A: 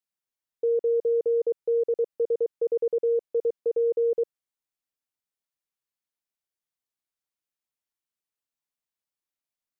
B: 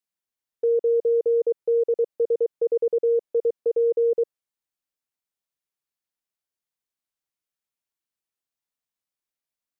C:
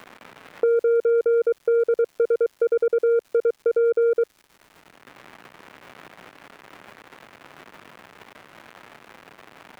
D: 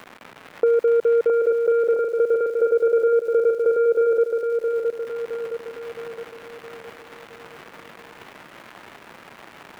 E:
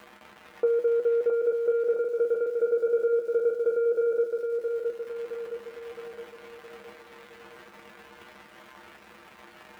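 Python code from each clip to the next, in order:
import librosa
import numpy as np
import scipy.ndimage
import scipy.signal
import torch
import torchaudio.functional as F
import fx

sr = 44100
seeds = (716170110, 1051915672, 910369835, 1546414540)

y1 = fx.dynamic_eq(x, sr, hz=500.0, q=0.92, threshold_db=-35.0, ratio=4.0, max_db=3)
y2 = fx.dmg_crackle(y1, sr, seeds[0], per_s=320.0, level_db=-48.0)
y2 = 10.0 ** (-18.5 / 20.0) * np.tanh(y2 / 10.0 ** (-18.5 / 20.0))
y2 = fx.band_squash(y2, sr, depth_pct=70)
y2 = y2 * librosa.db_to_amplitude(4.5)
y3 = fx.echo_feedback(y2, sr, ms=666, feedback_pct=50, wet_db=-4.5)
y3 = y3 * librosa.db_to_amplitude(1.5)
y4 = fx.comb_fb(y3, sr, f0_hz=69.0, decay_s=0.18, harmonics='odd', damping=0.0, mix_pct=90)
y4 = y4 * librosa.db_to_amplitude(1.5)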